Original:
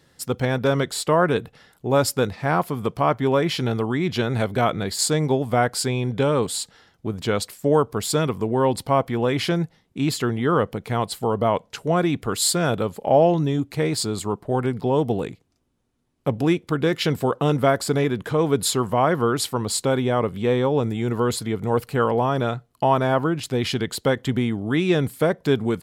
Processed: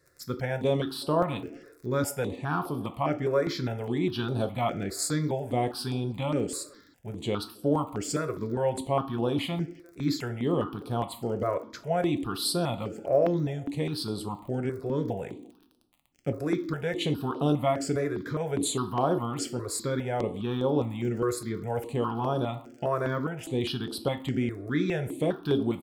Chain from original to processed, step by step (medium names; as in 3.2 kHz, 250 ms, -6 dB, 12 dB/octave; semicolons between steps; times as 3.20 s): speakerphone echo 350 ms, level -26 dB; crackle 37 per s -34 dBFS; on a send at -7.5 dB: resonant low shelf 210 Hz -10.5 dB, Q 3 + reverberation RT60 0.60 s, pre-delay 6 ms; on the sum: stepped phaser 4.9 Hz 840–7000 Hz; trim -6 dB